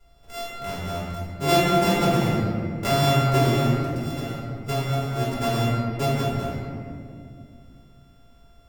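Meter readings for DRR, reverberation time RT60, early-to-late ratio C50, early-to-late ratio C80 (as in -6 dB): -8.5 dB, 2.4 s, -1.5 dB, 0.0 dB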